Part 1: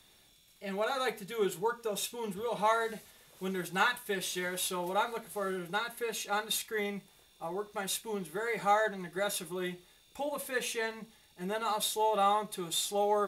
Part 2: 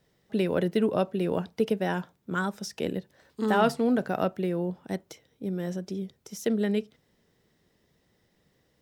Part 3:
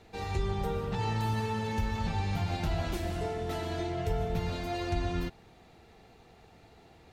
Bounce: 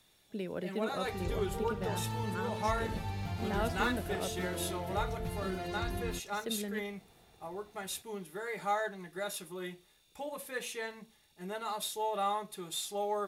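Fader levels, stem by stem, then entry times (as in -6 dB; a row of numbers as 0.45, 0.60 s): -5.0, -12.5, -6.5 dB; 0.00, 0.00, 0.90 s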